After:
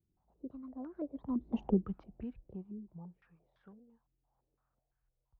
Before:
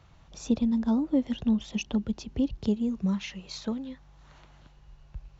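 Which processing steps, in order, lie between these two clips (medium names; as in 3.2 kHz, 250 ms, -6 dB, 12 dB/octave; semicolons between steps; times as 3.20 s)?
Doppler pass-by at 1.63 s, 43 m/s, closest 4.2 m; step-sequenced low-pass 5.9 Hz 330–1600 Hz; trim -1 dB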